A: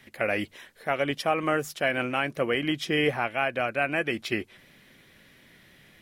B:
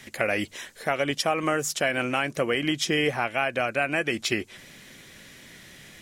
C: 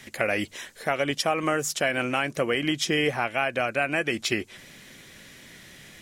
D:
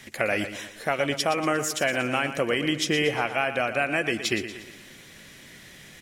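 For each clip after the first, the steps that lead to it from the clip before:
bell 7000 Hz +11 dB 1 oct; compressor 2:1, threshold -32 dBFS, peak gain reduction 7.5 dB; gain +6.5 dB
nothing audible
feedback echo 0.118 s, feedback 47%, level -11 dB

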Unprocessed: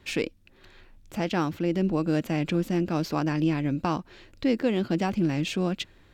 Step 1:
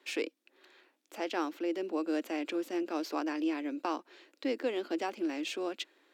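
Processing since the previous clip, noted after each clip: steep high-pass 280 Hz 48 dB/oct; gain -5.5 dB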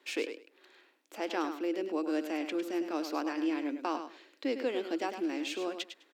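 feedback echo 0.103 s, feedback 17%, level -9 dB

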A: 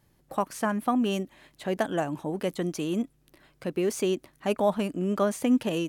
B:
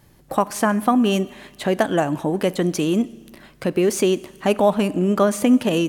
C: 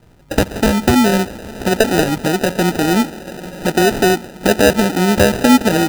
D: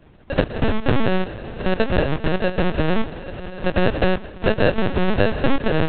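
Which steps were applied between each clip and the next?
in parallel at +1 dB: compressor, threshold -33 dBFS, peak gain reduction 14 dB; on the sum: Schroeder reverb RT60 1.4 s, combs from 30 ms, DRR 18.5 dB; gain +5.5 dB
diffused feedback echo 0.928 s, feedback 41%, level -15 dB; sample-and-hold 40×; gain +5 dB
compressor 2:1, threshold -14 dBFS, peak gain reduction 5 dB; LPC vocoder at 8 kHz pitch kept; gain -1 dB

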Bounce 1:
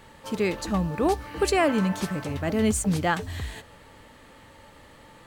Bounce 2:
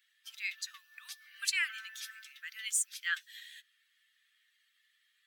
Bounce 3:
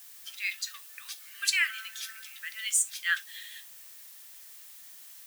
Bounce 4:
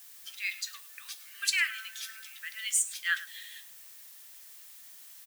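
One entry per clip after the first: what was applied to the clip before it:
per-bin expansion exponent 1.5; steep high-pass 1600 Hz 48 dB/oct
added noise blue -55 dBFS; reverb, pre-delay 3 ms, DRR 10 dB; gain +5 dB
echo 0.104 s -17 dB; gain -1.5 dB

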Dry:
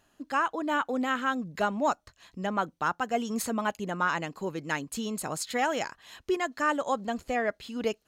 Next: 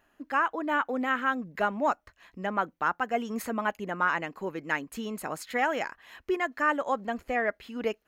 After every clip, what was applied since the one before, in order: graphic EQ 125/2000/4000/8000 Hz -8/+5/-7/-9 dB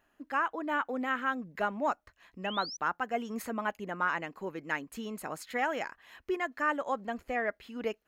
painted sound rise, 2.44–2.77, 2500–6100 Hz -37 dBFS; gain -4 dB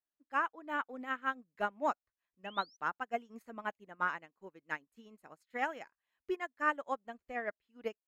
upward expander 2.5:1, over -47 dBFS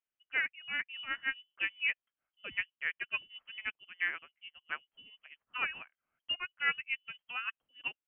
inverted band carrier 3200 Hz

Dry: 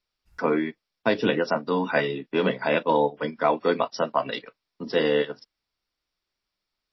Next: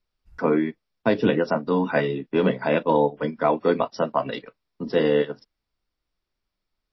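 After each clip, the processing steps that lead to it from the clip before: tilt -2 dB/oct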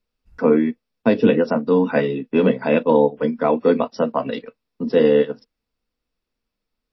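small resonant body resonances 240/470/2600 Hz, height 10 dB, ringing for 55 ms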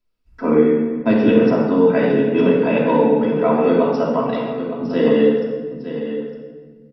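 on a send: echo 0.908 s -11 dB; on the sum: shoebox room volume 1600 m³, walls mixed, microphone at 2.9 m; gain -4 dB

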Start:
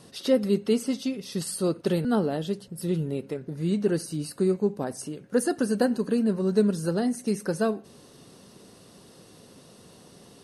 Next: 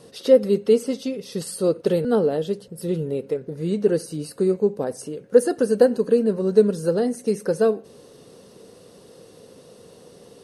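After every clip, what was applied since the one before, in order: bell 480 Hz +12 dB 0.48 oct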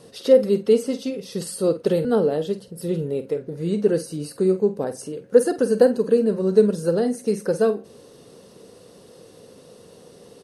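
doubler 48 ms -12 dB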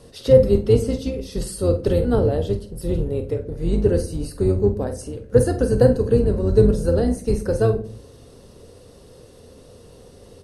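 octaver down 2 oct, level +2 dB; reverb RT60 0.45 s, pre-delay 7 ms, DRR 9 dB; gain -1 dB

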